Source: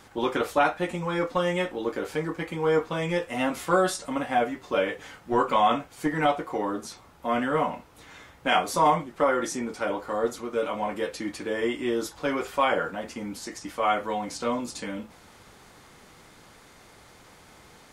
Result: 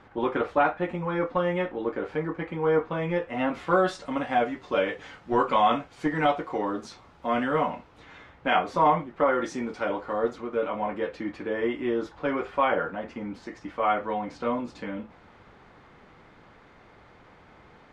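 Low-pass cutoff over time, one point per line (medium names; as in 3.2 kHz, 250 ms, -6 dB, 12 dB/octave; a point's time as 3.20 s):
3.24 s 2.1 kHz
4.28 s 4.6 kHz
7.53 s 4.6 kHz
8.63 s 2.5 kHz
9.18 s 2.5 kHz
9.63 s 4.3 kHz
10.61 s 2.3 kHz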